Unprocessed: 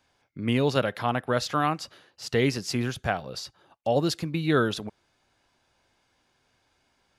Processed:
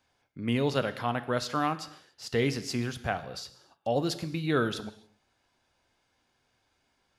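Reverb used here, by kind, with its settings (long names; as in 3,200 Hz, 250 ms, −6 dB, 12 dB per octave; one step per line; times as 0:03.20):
reverb whose tail is shaped and stops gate 310 ms falling, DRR 11.5 dB
level −4 dB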